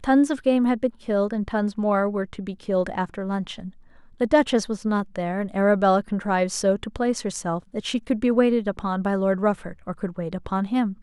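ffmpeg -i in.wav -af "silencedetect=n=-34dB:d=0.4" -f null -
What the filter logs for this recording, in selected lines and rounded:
silence_start: 3.69
silence_end: 4.21 | silence_duration: 0.51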